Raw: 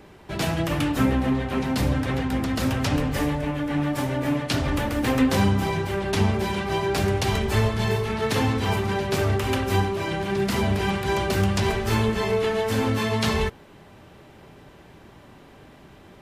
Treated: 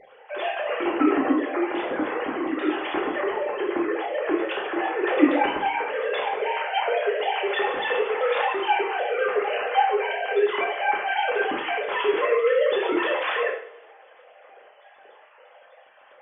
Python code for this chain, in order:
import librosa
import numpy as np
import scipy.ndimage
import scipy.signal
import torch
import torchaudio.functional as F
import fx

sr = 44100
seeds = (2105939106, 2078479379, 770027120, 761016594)

y = fx.sine_speech(x, sr)
y = fx.rev_double_slope(y, sr, seeds[0], early_s=0.56, late_s=1.8, knee_db=-22, drr_db=-2.5)
y = y * librosa.db_to_amplitude(-4.5)